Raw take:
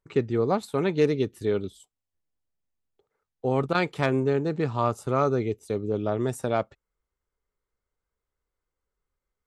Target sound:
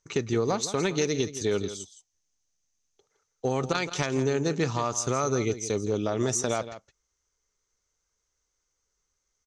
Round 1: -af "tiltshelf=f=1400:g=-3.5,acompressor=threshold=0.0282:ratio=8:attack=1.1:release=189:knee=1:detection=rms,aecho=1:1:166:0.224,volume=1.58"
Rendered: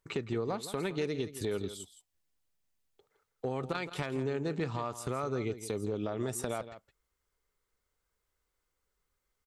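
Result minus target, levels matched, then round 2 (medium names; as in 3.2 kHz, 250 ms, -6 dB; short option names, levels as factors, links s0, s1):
compression: peak gain reduction +7 dB; 8 kHz band -6.0 dB
-af "lowpass=f=6200:t=q:w=9.7,tiltshelf=f=1400:g=-3.5,acompressor=threshold=0.0794:ratio=8:attack=1.1:release=189:knee=1:detection=rms,aecho=1:1:166:0.224,volume=1.58"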